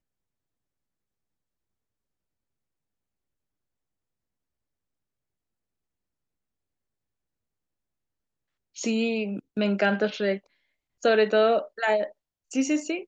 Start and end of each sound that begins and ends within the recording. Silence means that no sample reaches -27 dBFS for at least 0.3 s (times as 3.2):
8.79–10.36
11.05–12.04